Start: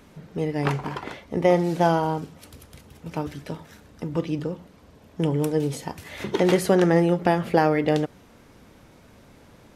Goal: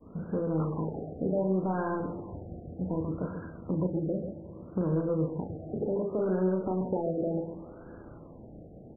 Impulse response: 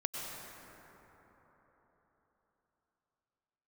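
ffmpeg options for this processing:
-filter_complex "[0:a]agate=range=-33dB:threshold=-47dB:ratio=3:detection=peak,firequalizer=gain_entry='entry(410,0);entry(800,-6);entry(2500,13)':delay=0.05:min_phase=1,acompressor=threshold=-30dB:ratio=5,asoftclip=type=tanh:threshold=-27dB,aecho=1:1:40.82|148.7:0.501|0.398,asplit=2[a][b];[1:a]atrim=start_sample=2205,adelay=110[c];[b][c]afir=irnorm=-1:irlink=0,volume=-17dB[d];[a][d]amix=inputs=2:normalize=0,asetrate=48000,aresample=44100,afftfilt=real='re*lt(b*sr/1024,780*pow(1700/780,0.5+0.5*sin(2*PI*0.66*pts/sr)))':imag='im*lt(b*sr/1024,780*pow(1700/780,0.5+0.5*sin(2*PI*0.66*pts/sr)))':win_size=1024:overlap=0.75,volume=5dB"

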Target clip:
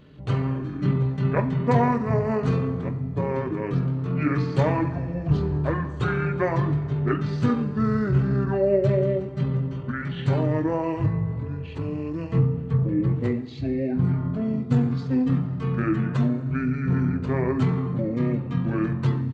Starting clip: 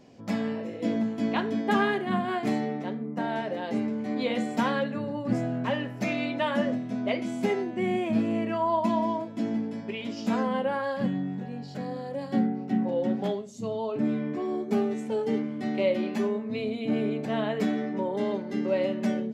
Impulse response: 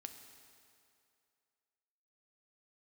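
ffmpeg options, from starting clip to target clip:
-filter_complex "[0:a]bandreject=f=580:w=12,asetrate=26222,aresample=44100,atempo=1.68179,asplit=2[a][b];[1:a]atrim=start_sample=2205[c];[b][c]afir=irnorm=-1:irlink=0,volume=4dB[d];[a][d]amix=inputs=2:normalize=0"

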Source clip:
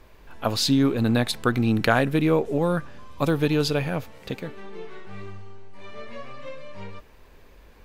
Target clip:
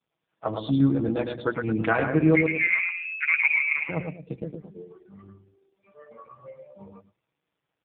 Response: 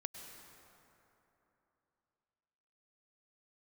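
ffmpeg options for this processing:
-filter_complex "[0:a]acrusher=bits=7:mix=0:aa=0.000001,asettb=1/sr,asplit=3[a][b][c];[a]atrim=end=2.354[d];[b]atrim=start=2.35:end=3.89,asetpts=PTS-STARTPTS,afade=t=in:d=0.004:c=qsin,afade=t=out:st=1.536:d=0.004:c=qsin,lowpass=f=2.2k:t=q:w=0.5098,lowpass=f=2.2k:t=q:w=0.6013,lowpass=f=2.2k:t=q:w=0.9,lowpass=f=2.2k:t=q:w=2.563,afreqshift=-2600[e];[c]atrim=start=3.886[f];[d][e]acrossfade=d=0.004:c1=hsin:c2=qsin[g];[g][f]acrossfade=d=0.004:c1=qsin:c2=hsin,highpass=65,aecho=1:1:110|220|330|440|550:0.596|0.262|0.115|0.0507|0.0223,afftdn=nr=26:nf=-31,aecho=1:1:6.2:0.75,adynamicequalizer=threshold=0.01:dfrequency=130:dqfactor=6.7:tfrequency=130:tqfactor=6.7:attack=5:release=100:ratio=0.375:range=3.5:mode=cutabove:tftype=bell,bandreject=f=60:t=h:w=6,bandreject=f=120:t=h:w=6,bandreject=f=180:t=h:w=6,volume=-3.5dB" -ar 8000 -c:a libopencore_amrnb -b:a 5150

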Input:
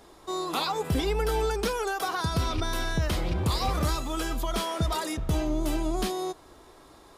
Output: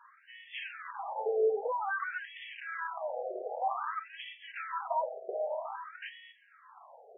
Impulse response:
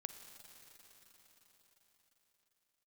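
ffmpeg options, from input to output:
-filter_complex "[0:a]aeval=exprs='0.141*sin(PI/2*1.78*val(0)/0.141)':c=same,highshelf=f=3k:g=-10[a];[1:a]atrim=start_sample=2205,atrim=end_sample=3969[b];[a][b]afir=irnorm=-1:irlink=0,afftfilt=real='re*between(b*sr/1024,540*pow(2500/540,0.5+0.5*sin(2*PI*0.52*pts/sr))/1.41,540*pow(2500/540,0.5+0.5*sin(2*PI*0.52*pts/sr))*1.41)':imag='im*between(b*sr/1024,540*pow(2500/540,0.5+0.5*sin(2*PI*0.52*pts/sr))/1.41,540*pow(2500/540,0.5+0.5*sin(2*PI*0.52*pts/sr))*1.41)':win_size=1024:overlap=0.75"

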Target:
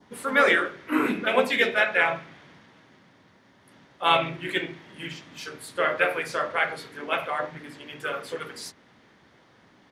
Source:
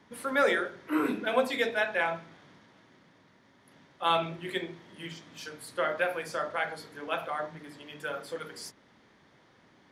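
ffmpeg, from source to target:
-filter_complex "[0:a]asplit=2[a][b];[b]asetrate=37084,aresample=44100,atempo=1.18921,volume=-7dB[c];[a][c]amix=inputs=2:normalize=0,adynamicequalizer=threshold=0.00562:dfrequency=2300:dqfactor=1.4:tfrequency=2300:tqfactor=1.4:attack=5:release=100:ratio=0.375:range=3.5:mode=boostabove:tftype=bell,volume=3dB"

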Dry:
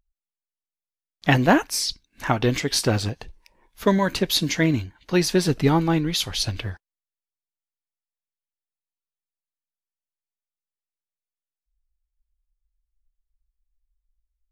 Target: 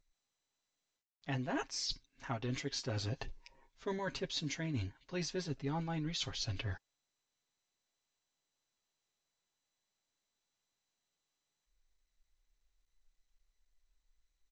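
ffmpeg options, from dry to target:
-af "aecho=1:1:7.4:0.66,areverse,acompressor=threshold=-32dB:ratio=6,areverse,volume=-4.5dB" -ar 16000 -c:a sbc -b:a 128k

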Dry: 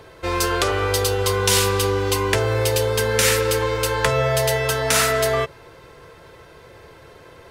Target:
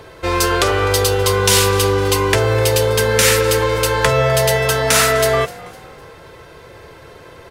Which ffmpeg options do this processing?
-filter_complex "[0:a]asplit=4[a][b][c][d];[b]adelay=253,afreqshift=50,volume=-21dB[e];[c]adelay=506,afreqshift=100,volume=-29dB[f];[d]adelay=759,afreqshift=150,volume=-36.9dB[g];[a][e][f][g]amix=inputs=4:normalize=0,acontrast=30"

